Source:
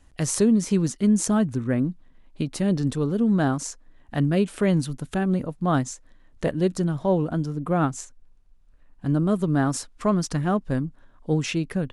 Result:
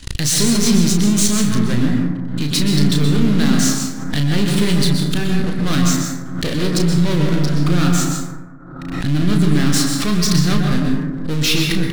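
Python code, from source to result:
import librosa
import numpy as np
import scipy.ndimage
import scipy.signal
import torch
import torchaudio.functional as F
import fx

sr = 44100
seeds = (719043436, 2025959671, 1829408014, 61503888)

y = np.where(x < 0.0, 10.0 ** (-12.0 / 20.0) * x, x)
y = fx.peak_eq(y, sr, hz=4000.0, db=13.0, octaves=0.95)
y = fx.leveller(y, sr, passes=5)
y = fx.peak_eq(y, sr, hz=710.0, db=-12.0, octaves=1.3)
y = fx.doubler(y, sr, ms=34.0, db=-6.0)
y = fx.rev_plate(y, sr, seeds[0], rt60_s=1.4, hf_ratio=0.3, predelay_ms=110, drr_db=0.5)
y = fx.pre_swell(y, sr, db_per_s=49.0)
y = y * librosa.db_to_amplitude(-4.0)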